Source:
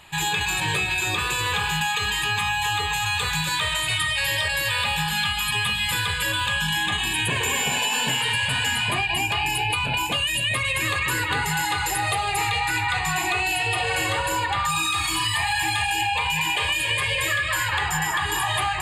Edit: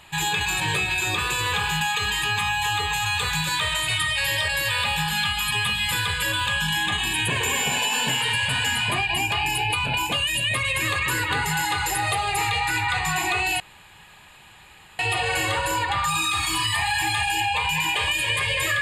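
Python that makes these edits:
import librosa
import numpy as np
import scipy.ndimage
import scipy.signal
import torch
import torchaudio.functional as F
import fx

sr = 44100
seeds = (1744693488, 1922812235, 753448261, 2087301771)

y = fx.edit(x, sr, fx.insert_room_tone(at_s=13.6, length_s=1.39), tone=tone)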